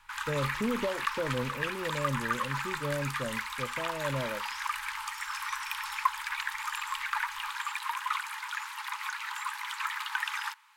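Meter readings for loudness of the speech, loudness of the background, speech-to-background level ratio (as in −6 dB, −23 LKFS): −36.0 LKFS, −34.0 LKFS, −2.0 dB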